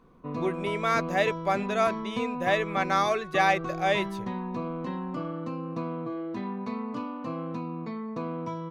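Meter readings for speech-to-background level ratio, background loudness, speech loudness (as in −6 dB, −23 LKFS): 7.0 dB, −34.5 LKFS, −27.5 LKFS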